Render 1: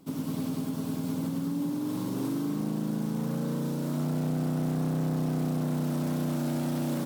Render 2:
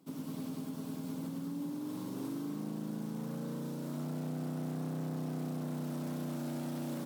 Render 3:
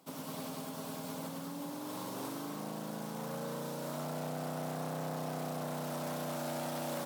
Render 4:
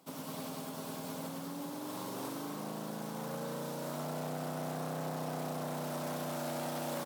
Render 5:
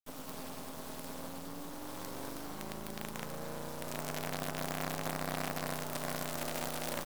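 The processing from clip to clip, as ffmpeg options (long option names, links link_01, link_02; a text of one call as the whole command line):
ffmpeg -i in.wav -af "highpass=130,volume=-8dB" out.wav
ffmpeg -i in.wav -af "lowshelf=frequency=440:width_type=q:width=1.5:gain=-9.5,volume=7dB" out.wav
ffmpeg -i in.wav -filter_complex "[0:a]asplit=8[link_01][link_02][link_03][link_04][link_05][link_06][link_07][link_08];[link_02]adelay=405,afreqshift=110,volume=-15dB[link_09];[link_03]adelay=810,afreqshift=220,volume=-19.2dB[link_10];[link_04]adelay=1215,afreqshift=330,volume=-23.3dB[link_11];[link_05]adelay=1620,afreqshift=440,volume=-27.5dB[link_12];[link_06]adelay=2025,afreqshift=550,volume=-31.6dB[link_13];[link_07]adelay=2430,afreqshift=660,volume=-35.8dB[link_14];[link_08]adelay=2835,afreqshift=770,volume=-39.9dB[link_15];[link_01][link_09][link_10][link_11][link_12][link_13][link_14][link_15]amix=inputs=8:normalize=0" out.wav
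ffmpeg -i in.wav -af "acrusher=bits=6:dc=4:mix=0:aa=0.000001,volume=1.5dB" out.wav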